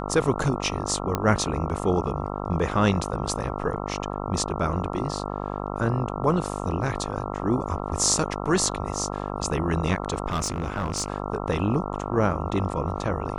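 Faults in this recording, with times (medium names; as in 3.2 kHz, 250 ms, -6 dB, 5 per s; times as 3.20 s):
buzz 50 Hz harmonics 27 -31 dBFS
1.15 s: pop -10 dBFS
6.09–6.10 s: dropout 5.8 ms
10.30–11.08 s: clipped -21.5 dBFS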